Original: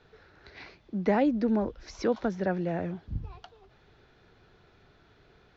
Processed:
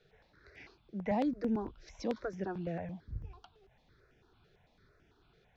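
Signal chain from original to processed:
step-sequenced phaser 9 Hz 260–4,100 Hz
level −5 dB

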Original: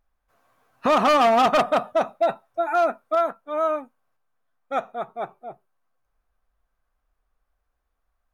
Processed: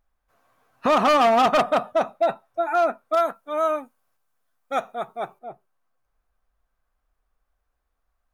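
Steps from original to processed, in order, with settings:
0:03.13–0:05.39: high-shelf EQ 4,100 Hz +11 dB

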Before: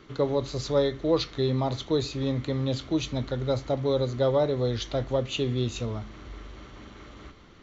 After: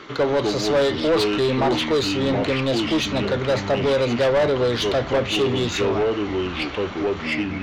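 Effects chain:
delay with pitch and tempo change per echo 184 ms, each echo −5 semitones, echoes 2, each echo −6 dB
mid-hump overdrive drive 23 dB, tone 3,200 Hz, clips at −11 dBFS

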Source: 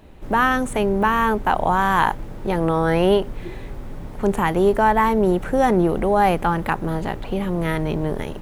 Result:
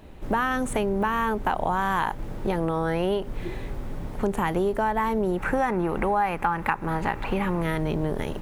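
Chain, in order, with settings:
gain on a spectral selection 0:05.38–0:07.62, 790–2,800 Hz +8 dB
downward compressor 6 to 1, threshold −21 dBFS, peak gain reduction 14 dB

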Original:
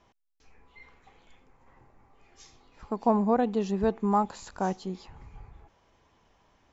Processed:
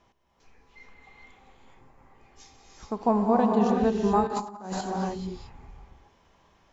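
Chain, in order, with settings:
reverb whose tail is shaped and stops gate 450 ms rising, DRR −0.5 dB
0:04.27–0:04.81: compressor whose output falls as the input rises −32 dBFS, ratio −0.5

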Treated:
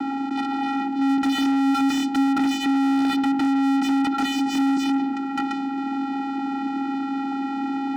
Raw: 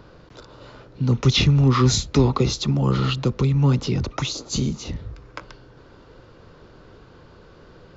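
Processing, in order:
channel vocoder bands 8, square 273 Hz
mid-hump overdrive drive 47 dB, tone 1,500 Hz, clips at −6 dBFS
level −7.5 dB

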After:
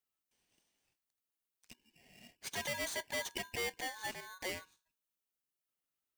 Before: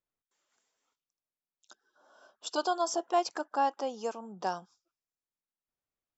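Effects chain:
high-shelf EQ 6,000 Hz +11 dB
mains-hum notches 60/120/180/240/300/360 Hz
soft clipping −31 dBFS, distortion −7 dB
thirty-one-band graphic EQ 250 Hz −6 dB, 1,600 Hz +9 dB, 6,300 Hz −8 dB
ring modulator with a square carrier 1,300 Hz
level −3.5 dB

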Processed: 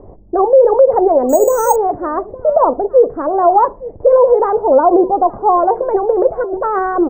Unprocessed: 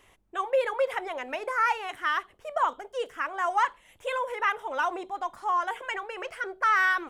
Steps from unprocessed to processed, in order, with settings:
inverse Chebyshev low-pass filter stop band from 2,900 Hz, stop band 70 dB
0:06.37–0:06.79: compressor whose output falls as the input rises −45 dBFS, ratio −1
on a send: single-tap delay 860 ms −22.5 dB
0:01.29–0:01.76: on the sum: bad sample-rate conversion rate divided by 6×, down none, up hold
boost into a limiter +28.5 dB
level −1 dB

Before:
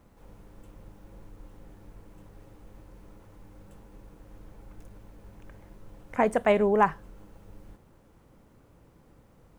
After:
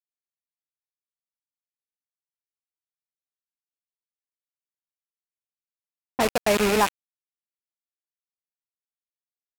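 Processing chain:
loose part that buzzes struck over −35 dBFS, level −19 dBFS
bit reduction 4 bits
low-pass that shuts in the quiet parts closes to 810 Hz, open at −21 dBFS

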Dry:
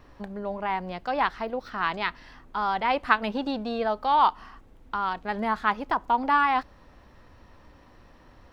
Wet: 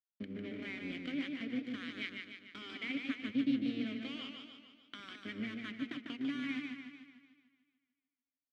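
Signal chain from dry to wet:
sub-octave generator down 1 octave, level −3 dB
downward expander −41 dBFS
downward compressor 6 to 1, threshold −33 dBFS, peak gain reduction 17.5 dB
in parallel at −1 dB: brickwall limiter −30.5 dBFS, peak gain reduction 10.5 dB
on the sum: dead-zone distortion −36.5 dBFS
formant filter i
single-tap delay 228 ms −22.5 dB
feedback echo with a swinging delay time 148 ms, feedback 54%, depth 88 cents, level −4.5 dB
level +9.5 dB

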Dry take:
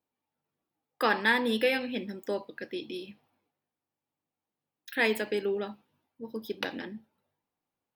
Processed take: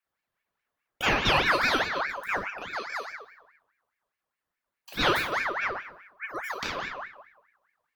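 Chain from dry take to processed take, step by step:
rectangular room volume 240 cubic metres, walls mixed, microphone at 1.5 metres
ring modulator whose carrier an LFO sweeps 1,400 Hz, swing 45%, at 4.8 Hz

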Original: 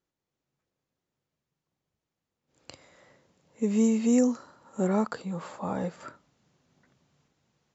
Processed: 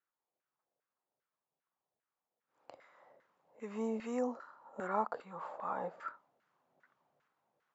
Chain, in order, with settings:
auto-filter band-pass saw down 2.5 Hz 590–1,600 Hz
level +2.5 dB

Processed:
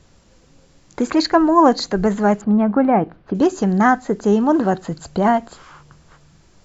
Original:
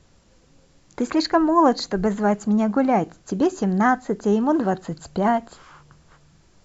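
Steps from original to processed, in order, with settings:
0:02.41–0:03.35: Gaussian smoothing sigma 3 samples
level +4 dB

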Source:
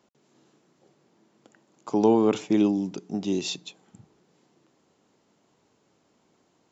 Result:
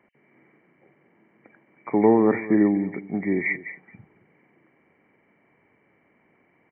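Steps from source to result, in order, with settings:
hearing-aid frequency compression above 1,600 Hz 4 to 1
single-tap delay 221 ms −16.5 dB
level +2.5 dB

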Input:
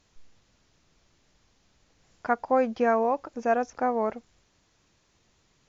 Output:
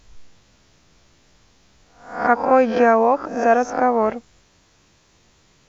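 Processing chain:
peak hold with a rise ahead of every peak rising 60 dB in 0.50 s
level +8 dB

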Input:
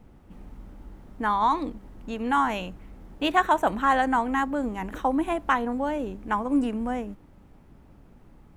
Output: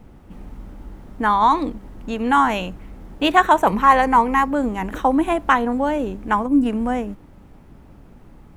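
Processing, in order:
0:03.64–0:04.48: EQ curve with evenly spaced ripples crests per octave 0.84, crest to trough 9 dB
0:06.46–0:06.66: gain on a spectral selection 330–10,000 Hz −10 dB
level +7 dB

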